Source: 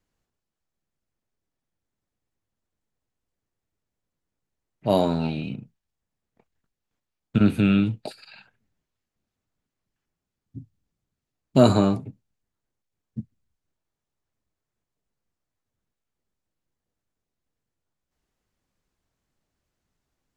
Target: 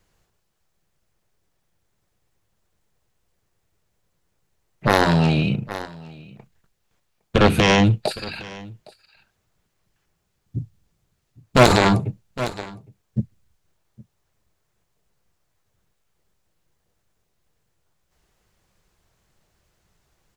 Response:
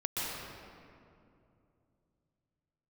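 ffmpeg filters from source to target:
-af "equalizer=f=260:t=o:w=0.34:g=-11.5,aeval=exprs='0.562*(cos(1*acos(clip(val(0)/0.562,-1,1)))-cos(1*PI/2))+0.158*(cos(7*acos(clip(val(0)/0.562,-1,1)))-cos(7*PI/2))':c=same,aecho=1:1:811:0.075,alimiter=level_in=5.31:limit=0.891:release=50:level=0:latency=1,volume=0.891"

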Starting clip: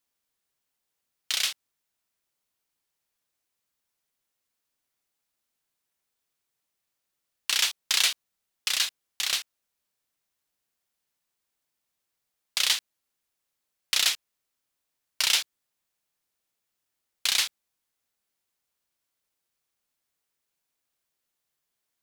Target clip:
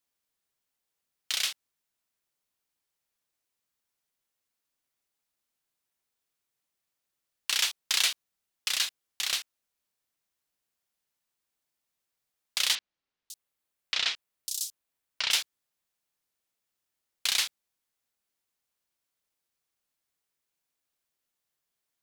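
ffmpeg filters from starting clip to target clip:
-filter_complex "[0:a]asettb=1/sr,asplit=3[s0][s1][s2];[s0]atrim=end=12.754[s3];[s1]atrim=start=12.75:end=15.31,asetpts=PTS-STARTPTS,afade=t=in:d=0.004:c=qsin,afade=t=out:st=2.556:d=0.004:c=qsin,acrossover=split=5500[s4][s5];[s5]adelay=550[s6];[s4][s6]amix=inputs=2:normalize=0,atrim=end_sample=112896[s7];[s2]atrim=start=15.306[s8];[s3][s7]acrossfade=d=0.004:c1=hsin:c2=qsin[s9];[s9][s8]acrossfade=d=0.004:c1=qsin:c2=hsin,volume=0.75"

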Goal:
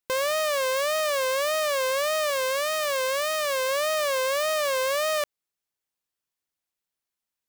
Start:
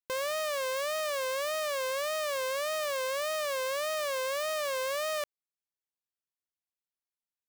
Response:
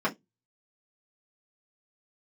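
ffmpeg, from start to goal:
-filter_complex "[0:a]asettb=1/sr,asplit=3[s0][s1][s2];[s0]atrim=end=2.304[s3];[s1]atrim=start=2.3:end=3.69,asetpts=PTS-STARTPTS,afade=t=in:d=0.004:c=qsin,afade=t=out:st=1.386:d=0.004:c=qsin,equalizer=f=740:w=6.1:g=-13.5[s4];[s2]atrim=start=3.686[s5];[s3][s4]acrossfade=d=0.004:c1=hsin:c2=qsin[s6];[s6][s5]acrossfade=d=0.004:c1=qsin:c2=hsin,volume=2.24"

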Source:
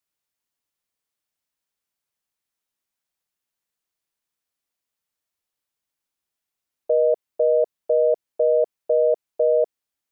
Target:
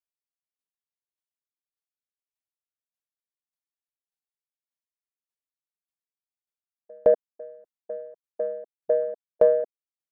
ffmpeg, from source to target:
-af "afwtdn=0.0316,acontrast=37,aeval=exprs='val(0)*pow(10,-40*if(lt(mod(1.7*n/s,1),2*abs(1.7)/1000),1-mod(1.7*n/s,1)/(2*abs(1.7)/1000),(mod(1.7*n/s,1)-2*abs(1.7)/1000)/(1-2*abs(1.7)/1000))/20)':c=same"

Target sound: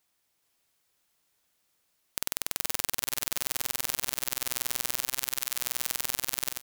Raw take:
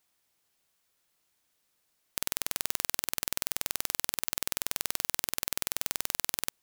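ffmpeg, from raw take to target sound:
-filter_complex "[0:a]asettb=1/sr,asplit=3[s0][s1][s2];[s0]atrim=end=4.974[s3];[s1]atrim=start=4.97:end=5.59,asetpts=PTS-STARTPTS,afade=t=in:d=0.004:c=qsin,afade=t=out:st=0.616:d=0.004:c=qsin,highpass=960[s4];[s2]atrim=start=5.586[s5];[s3][s4]acrossfade=d=0.004:c1=hsin:c2=qsin[s6];[s6][s5]acrossfade=d=0.004:c1=qsin:c2=hsin,aecho=1:1:423|846|1269|1692|2115|2538:0.631|0.278|0.122|0.0537|0.0236|0.0104"

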